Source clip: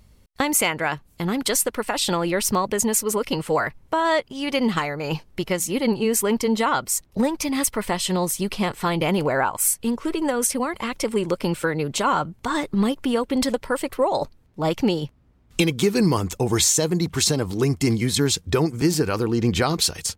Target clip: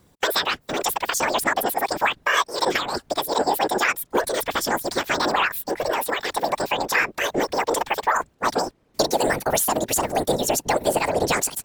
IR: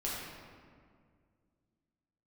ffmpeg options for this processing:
-filter_complex "[0:a]acrossover=split=6600[s0][s1];[s1]acompressor=threshold=0.0126:ratio=4:attack=1:release=60[s2];[s0][s2]amix=inputs=2:normalize=0,afftfilt=real='hypot(re,im)*cos(2*PI*random(0))':imag='hypot(re,im)*sin(2*PI*random(1))':win_size=512:overlap=0.75,asetrate=76440,aresample=44100,acrossover=split=430[s3][s4];[s4]acontrast=90[s5];[s3][s5]amix=inputs=2:normalize=0"

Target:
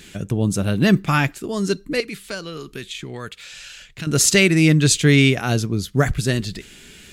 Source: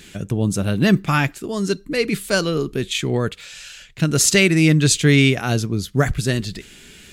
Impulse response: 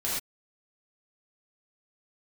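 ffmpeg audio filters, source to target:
-filter_complex "[0:a]asettb=1/sr,asplit=3[s0][s1][s2];[s0]atrim=end=2.004[s3];[s1]atrim=start=2:end=4.07,asetpts=PTS-STARTPTS,afade=t=in:d=0.004:c=qsin,afade=t=out:st=2.066:d=0.004:c=qsin,acrossover=split=1100|5800[s4][s5][s6];[s4]acompressor=threshold=0.0224:ratio=4[s7];[s5]acompressor=threshold=0.0224:ratio=4[s8];[s6]acompressor=threshold=0.00447:ratio=4[s9];[s7][s8][s9]amix=inputs=3:normalize=0[s10];[s2]atrim=start=4.066[s11];[s3][s10]acrossfade=d=0.004:c1=hsin:c2=qsin[s12];[s12][s11]acrossfade=d=0.004:c1=qsin:c2=hsin"

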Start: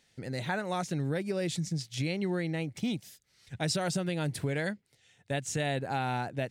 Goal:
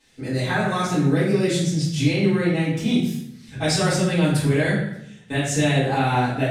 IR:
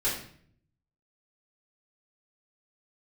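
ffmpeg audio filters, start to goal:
-filter_complex "[1:a]atrim=start_sample=2205,asetrate=31311,aresample=44100[s0];[0:a][s0]afir=irnorm=-1:irlink=0"

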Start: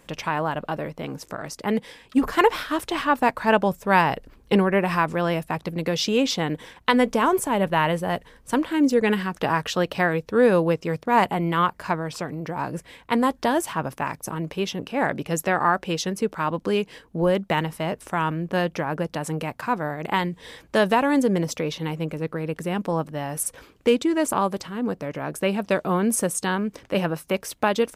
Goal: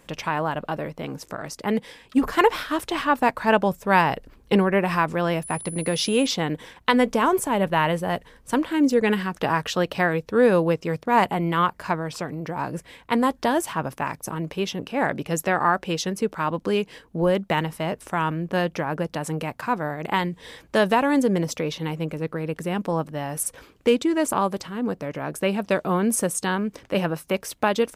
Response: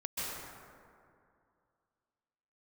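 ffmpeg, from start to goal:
-filter_complex "[0:a]asettb=1/sr,asplit=3[s0][s1][s2];[s0]atrim=end=5.434[s3];[s1]atrim=start=5.43:end=6.27,asetpts=PTS-STARTPTS,afade=t=in:d=0.004:c=qsin,afade=t=out:st=0.836:d=0.004:c=qsin,aeval=exprs='val(0)+0.0178*sin(2*PI*10000*n/s)':c=same[s4];[s2]atrim=start=6.266[s5];[s3][s4]acrossfade=d=0.004:c1=hsin:c2=qsin[s6];[s6][s5]acrossfade=d=0.004:c1=qsin:c2=hsin"

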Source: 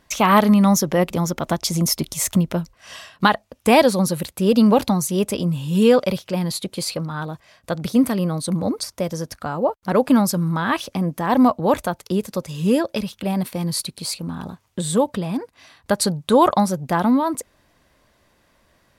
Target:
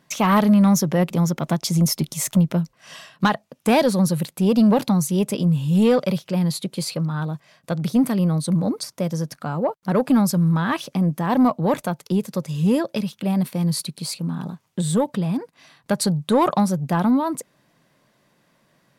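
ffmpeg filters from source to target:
-af "lowshelf=f=100:t=q:w=3:g=-13,asoftclip=type=tanh:threshold=0.473,volume=0.75"

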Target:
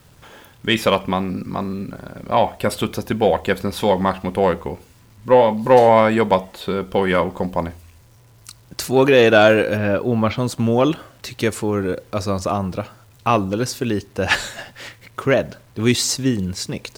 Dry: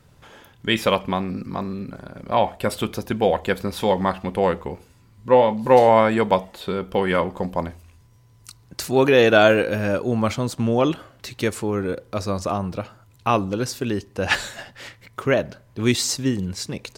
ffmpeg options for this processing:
-filter_complex "[0:a]asettb=1/sr,asplit=3[s0][s1][s2];[s0]atrim=end=9.774[s3];[s1]atrim=start=9.77:end=10.38,asetpts=PTS-STARTPTS,afade=t=in:d=0.004:c=qsin,afade=t=out:st=0.606:d=0.004:c=qsin,lowpass=f=4200:w=0.5412,lowpass=f=4200:w=1.3066[s4];[s2]atrim=start=10.376[s5];[s3][s4]acrossfade=d=0.004:c1=hsin:c2=qsin[s6];[s6][s5]acrossfade=d=0.004:c1=qsin:c2=hsin,asplit=2[s7][s8];[s8]acontrast=45,volume=0.891[s9];[s7][s9]amix=inputs=2:normalize=0,acrusher=bits=7:mix=0:aa=0.000001,volume=0.531"

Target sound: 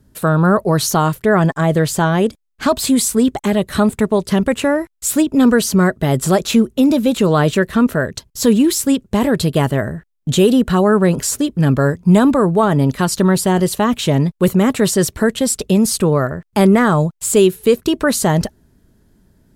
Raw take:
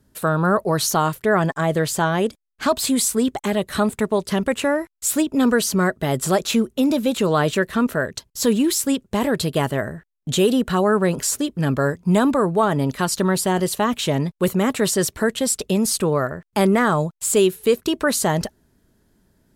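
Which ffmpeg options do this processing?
-af "lowshelf=f=280:g=7,volume=1.33"

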